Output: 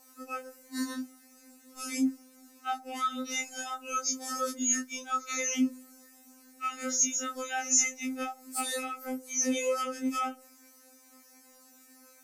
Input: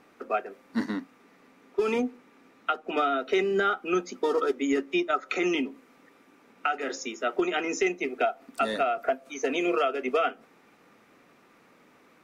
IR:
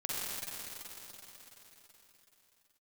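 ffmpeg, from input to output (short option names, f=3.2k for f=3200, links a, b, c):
-af "afftfilt=real='re':imag='-im':win_size=2048:overlap=0.75,aexciter=amount=13.5:drive=2:freq=4.9k,afftfilt=real='re*3.46*eq(mod(b,12),0)':imag='im*3.46*eq(mod(b,12),0)':win_size=2048:overlap=0.75"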